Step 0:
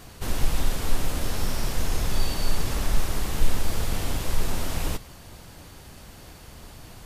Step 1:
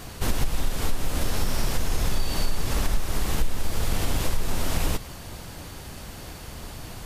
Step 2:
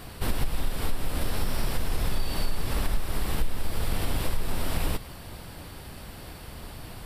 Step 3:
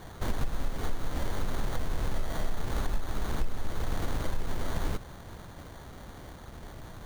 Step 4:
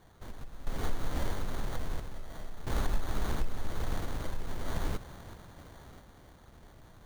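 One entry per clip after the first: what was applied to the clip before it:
compression 5:1, threshold -24 dBFS, peak gain reduction 12 dB; trim +6 dB
peaking EQ 6.5 kHz -12.5 dB 0.33 oct; trim -2.5 dB
sample-and-hold 17×; trim -3.5 dB
random-step tremolo 1.5 Hz, depth 80%

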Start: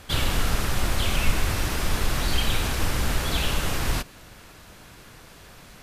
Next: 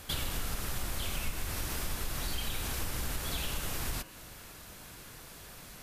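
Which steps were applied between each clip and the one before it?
treble shelf 8.3 kHz +11.5 dB; de-hum 107 Hz, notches 29; compression 3:1, threshold -30 dBFS, peak gain reduction 13 dB; trim -3.5 dB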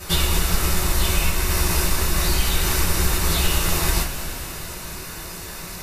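band-stop 3.3 kHz, Q 11; two-slope reverb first 0.21 s, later 4.2 s, from -20 dB, DRR -10 dB; trim +4.5 dB

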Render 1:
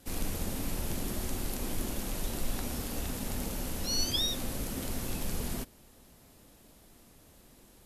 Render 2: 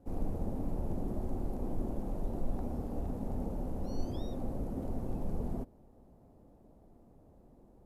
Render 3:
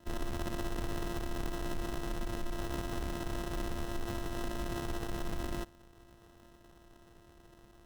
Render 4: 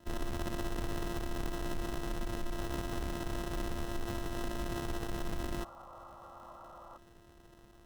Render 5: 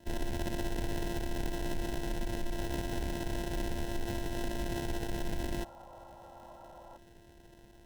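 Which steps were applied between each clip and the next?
FFT filter 770 Hz 0 dB, 1.6 kHz -18 dB, 3.2 kHz -27 dB
sorted samples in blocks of 128 samples; peak limiter -29 dBFS, peak gain reduction 7.5 dB; sample-rate reducer 2.3 kHz, jitter 0%; trim +1 dB
painted sound noise, 5.58–6.98 s, 500–1400 Hz -52 dBFS
Butterworth band-stop 1.2 kHz, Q 2.7; trim +2 dB

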